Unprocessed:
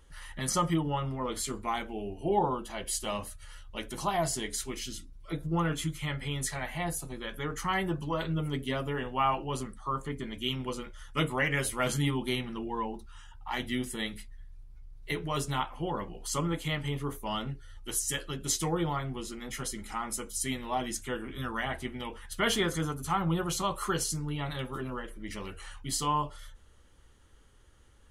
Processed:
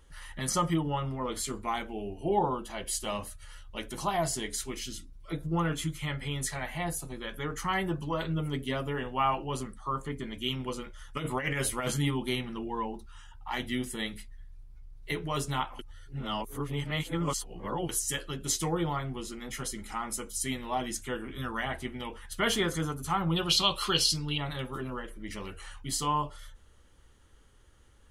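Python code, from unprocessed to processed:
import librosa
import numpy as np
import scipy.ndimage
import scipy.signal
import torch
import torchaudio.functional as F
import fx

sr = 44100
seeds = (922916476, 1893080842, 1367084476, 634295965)

y = fx.over_compress(x, sr, threshold_db=-30.0, ratio=-0.5, at=(11.13, 11.91))
y = fx.band_shelf(y, sr, hz=3600.0, db=14.5, octaves=1.3, at=(23.36, 24.38))
y = fx.edit(y, sr, fx.reverse_span(start_s=15.79, length_s=2.1), tone=tone)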